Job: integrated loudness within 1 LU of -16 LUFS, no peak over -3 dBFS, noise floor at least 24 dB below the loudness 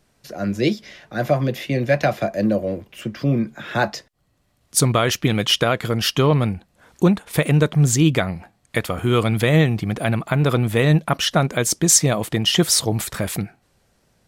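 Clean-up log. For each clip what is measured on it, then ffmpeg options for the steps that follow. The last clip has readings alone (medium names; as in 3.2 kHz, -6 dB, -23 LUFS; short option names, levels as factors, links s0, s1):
loudness -19.5 LUFS; peak level -2.5 dBFS; loudness target -16.0 LUFS
-> -af "volume=1.5,alimiter=limit=0.708:level=0:latency=1"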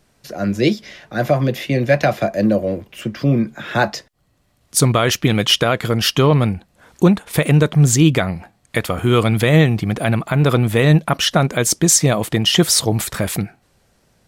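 loudness -16.5 LUFS; peak level -3.0 dBFS; noise floor -61 dBFS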